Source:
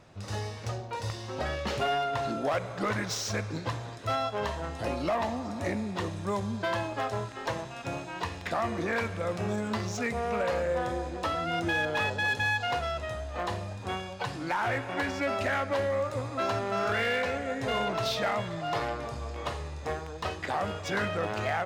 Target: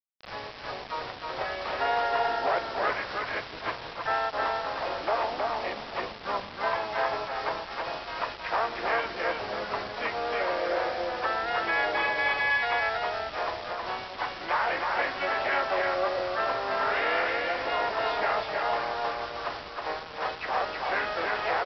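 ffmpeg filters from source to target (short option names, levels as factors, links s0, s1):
-filter_complex "[0:a]acrossover=split=490 2500:gain=0.0631 1 0.0708[s0][s1][s2];[s0][s1][s2]amix=inputs=3:normalize=0,aeval=exprs='val(0)+0.000708*(sin(2*PI*50*n/s)+sin(2*PI*2*50*n/s)/2+sin(2*PI*3*50*n/s)/3+sin(2*PI*4*50*n/s)/4+sin(2*PI*5*50*n/s)/5)':c=same,asplit=4[s3][s4][s5][s6];[s4]asetrate=29433,aresample=44100,atempo=1.49831,volume=0.316[s7];[s5]asetrate=52444,aresample=44100,atempo=0.840896,volume=0.355[s8];[s6]asetrate=58866,aresample=44100,atempo=0.749154,volume=0.447[s9];[s3][s7][s8][s9]amix=inputs=4:normalize=0,aresample=11025,acrusher=bits=6:mix=0:aa=0.000001,aresample=44100,aecho=1:1:317:0.708,volume=1.26"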